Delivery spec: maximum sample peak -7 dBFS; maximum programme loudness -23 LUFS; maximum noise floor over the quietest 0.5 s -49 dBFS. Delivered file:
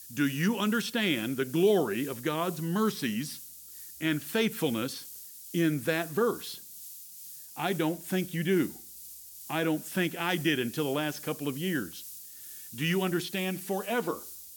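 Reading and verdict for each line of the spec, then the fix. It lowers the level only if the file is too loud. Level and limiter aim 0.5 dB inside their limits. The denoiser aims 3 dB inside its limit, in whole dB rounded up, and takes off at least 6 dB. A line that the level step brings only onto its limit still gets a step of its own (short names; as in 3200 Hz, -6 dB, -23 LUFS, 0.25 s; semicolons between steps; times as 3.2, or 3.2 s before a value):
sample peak -13.5 dBFS: OK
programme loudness -30.0 LUFS: OK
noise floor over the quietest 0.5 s -47 dBFS: fail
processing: denoiser 6 dB, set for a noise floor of -47 dBFS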